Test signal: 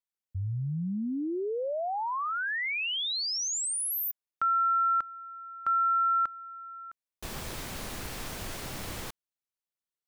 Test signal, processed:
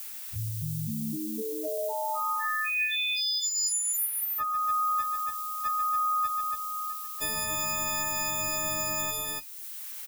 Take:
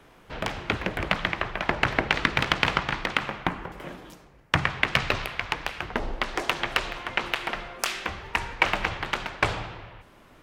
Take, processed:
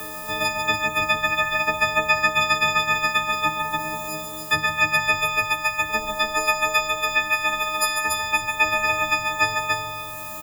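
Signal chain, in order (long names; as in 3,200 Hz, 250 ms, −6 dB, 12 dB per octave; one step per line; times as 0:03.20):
every partial snapped to a pitch grid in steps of 6 semitones
flanger 0.23 Hz, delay 9.7 ms, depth 1.6 ms, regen +66%
background noise violet −51 dBFS
on a send: loudspeakers that aren't time-aligned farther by 48 metres −7 dB, 97 metres −5 dB
on the sum: multiband upward and downward compressor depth 70%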